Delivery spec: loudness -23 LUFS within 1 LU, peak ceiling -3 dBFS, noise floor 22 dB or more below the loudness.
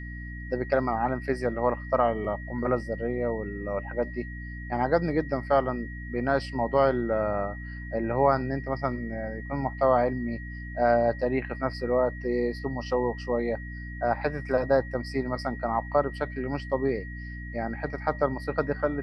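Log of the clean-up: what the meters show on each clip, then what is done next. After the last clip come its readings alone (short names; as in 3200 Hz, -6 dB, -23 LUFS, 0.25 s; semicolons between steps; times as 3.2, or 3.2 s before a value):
hum 60 Hz; harmonics up to 300 Hz; hum level -36 dBFS; steady tone 1900 Hz; tone level -42 dBFS; loudness -28.0 LUFS; peak -9.5 dBFS; loudness target -23.0 LUFS
-> notches 60/120/180/240/300 Hz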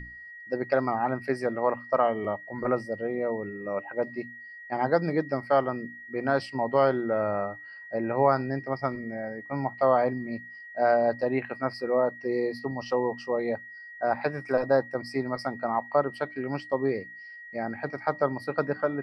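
hum none; steady tone 1900 Hz; tone level -42 dBFS
-> notch 1900 Hz, Q 30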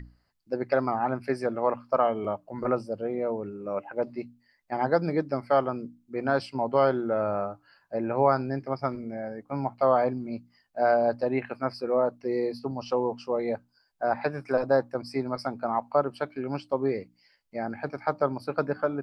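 steady tone none; loudness -28.5 LUFS; peak -10.0 dBFS; loudness target -23.0 LUFS
-> gain +5.5 dB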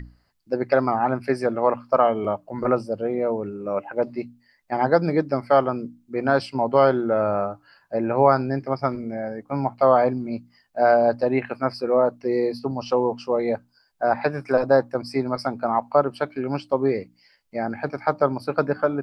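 loudness -23.0 LUFS; peak -4.5 dBFS; noise floor -65 dBFS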